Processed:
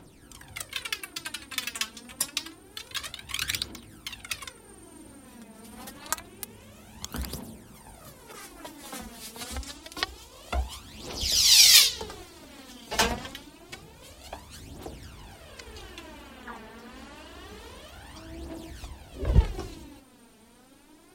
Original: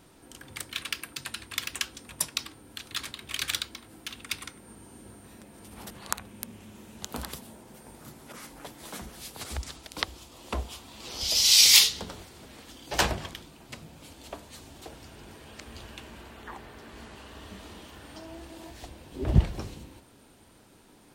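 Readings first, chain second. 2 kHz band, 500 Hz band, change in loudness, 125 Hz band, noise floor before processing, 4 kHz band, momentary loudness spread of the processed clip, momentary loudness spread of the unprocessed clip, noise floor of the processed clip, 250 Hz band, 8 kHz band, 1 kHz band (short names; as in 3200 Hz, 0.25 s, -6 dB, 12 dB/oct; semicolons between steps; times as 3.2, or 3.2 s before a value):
+1.0 dB, +1.0 dB, +1.0 dB, -0.5 dB, -56 dBFS, +1.0 dB, 20 LU, 20 LU, -54 dBFS, -1.0 dB, +1.0 dB, +1.0 dB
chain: phaser 0.27 Hz, delay 4.6 ms, feedback 62%; gain -1 dB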